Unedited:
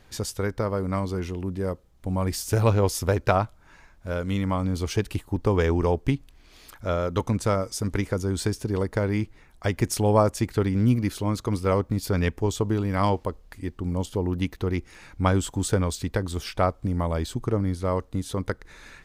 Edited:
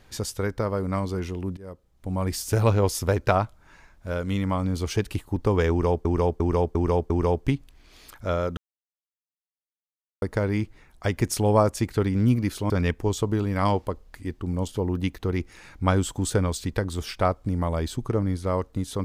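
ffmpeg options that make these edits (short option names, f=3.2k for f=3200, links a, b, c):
-filter_complex "[0:a]asplit=9[a][b][c][d][e][f][g][h][i];[a]atrim=end=1.57,asetpts=PTS-STARTPTS,afade=t=out:st=1.566:d=0.004:c=hsin:silence=0.1[j];[b]atrim=start=1.57:end=6.052,asetpts=PTS-STARTPTS,afade=t=in:d=0.92:c=qsin:silence=0.1[k];[c]atrim=start=5.698:end=6.052[l];[d]atrim=start=5.698:end=6.052[m];[e]atrim=start=5.698:end=6.052[n];[f]atrim=start=5.698:end=7.17,asetpts=PTS-STARTPTS,afade=t=out:st=1.468:d=0.004:c=hsin[o];[g]atrim=start=7.17:end=8.82,asetpts=PTS-STARTPTS,volume=0[p];[h]atrim=start=8.82:end=11.302,asetpts=PTS-STARTPTS,afade=t=in:d=0.004:c=hsin[q];[i]atrim=start=12.078[r];[j][k]concat=n=2:v=0:a=1[s];[s][l]acrossfade=d=0.004:c1=hsin:c2=hsin[t];[t][m]acrossfade=d=0.004:c1=hsin:c2=hsin[u];[u][n]acrossfade=d=0.004:c1=hsin:c2=hsin[v];[o][p][q]concat=n=3:v=0:a=1[w];[v][w]acrossfade=d=0.004:c1=hsin:c2=hsin[x];[x][r]acrossfade=d=0.004:c1=hsin:c2=hsin"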